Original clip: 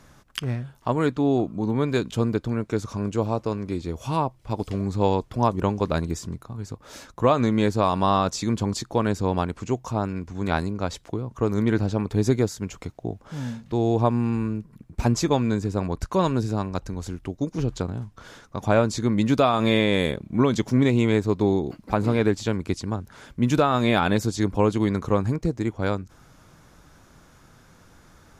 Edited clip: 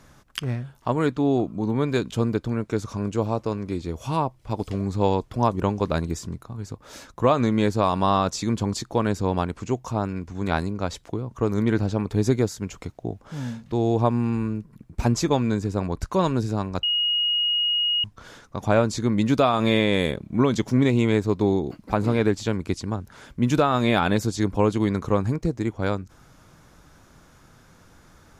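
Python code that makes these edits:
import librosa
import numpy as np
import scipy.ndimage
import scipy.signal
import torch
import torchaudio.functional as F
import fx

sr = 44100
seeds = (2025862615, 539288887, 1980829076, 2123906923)

y = fx.edit(x, sr, fx.bleep(start_s=16.83, length_s=1.21, hz=2880.0, db=-19.5), tone=tone)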